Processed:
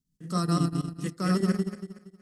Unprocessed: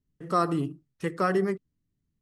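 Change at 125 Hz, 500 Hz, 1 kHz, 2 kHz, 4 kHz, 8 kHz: +6.5, −6.0, −6.0, −5.0, +6.5, +9.5 decibels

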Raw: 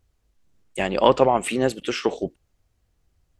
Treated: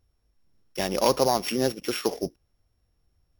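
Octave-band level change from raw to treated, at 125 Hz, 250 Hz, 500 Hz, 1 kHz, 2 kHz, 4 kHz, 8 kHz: −3.5, −3.5, −4.5, −5.5, −5.5, 0.0, +3.0 decibels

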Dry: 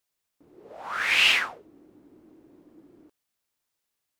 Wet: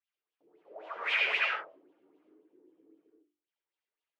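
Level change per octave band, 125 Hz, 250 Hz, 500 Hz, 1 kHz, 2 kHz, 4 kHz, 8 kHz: can't be measured, −11.0 dB, −0.5 dB, −4.5 dB, −6.5 dB, −12.5 dB, below −20 dB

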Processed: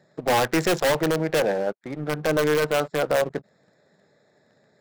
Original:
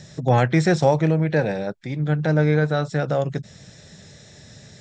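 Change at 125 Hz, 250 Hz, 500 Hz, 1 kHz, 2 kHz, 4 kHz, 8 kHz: −13.0 dB, −5.0 dB, 0.0 dB, −0.5 dB, +0.5 dB, +5.5 dB, can't be measured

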